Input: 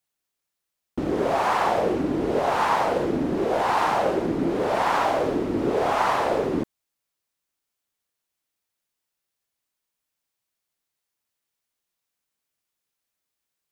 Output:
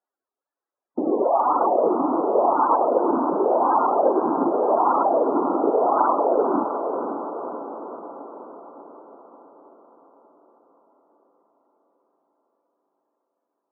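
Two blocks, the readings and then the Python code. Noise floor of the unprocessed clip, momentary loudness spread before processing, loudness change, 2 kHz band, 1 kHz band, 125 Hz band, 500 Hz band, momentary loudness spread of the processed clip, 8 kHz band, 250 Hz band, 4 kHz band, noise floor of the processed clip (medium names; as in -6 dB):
-83 dBFS, 4 LU, +2.5 dB, -14.0 dB, +4.0 dB, under -10 dB, +4.0 dB, 15 LU, under -35 dB, +2.0 dB, under -40 dB, under -85 dBFS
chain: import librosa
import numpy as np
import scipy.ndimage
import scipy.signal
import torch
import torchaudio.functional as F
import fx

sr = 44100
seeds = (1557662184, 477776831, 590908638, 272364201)

p1 = scipy.signal.sosfilt(scipy.signal.butter(2, 1300.0, 'lowpass', fs=sr, output='sos'), x)
p2 = 10.0 ** (-27.0 / 20.0) * np.tanh(p1 / 10.0 ** (-27.0 / 20.0))
p3 = p1 + (p2 * 10.0 ** (-11.5 / 20.0))
p4 = scipy.signal.sosfilt(scipy.signal.butter(4, 240.0, 'highpass', fs=sr, output='sos'), p3)
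p5 = fx.spec_topn(p4, sr, count=32)
p6 = fx.low_shelf(p5, sr, hz=370.0, db=-5.0)
p7 = p6 + fx.echo_split(p6, sr, split_hz=390.0, low_ms=86, high_ms=350, feedback_pct=52, wet_db=-10, dry=0)
p8 = fx.dereverb_blind(p7, sr, rt60_s=1.9)
p9 = fx.echo_diffused(p8, sr, ms=559, feedback_pct=56, wet_db=-7)
y = p9 * 10.0 ** (6.0 / 20.0)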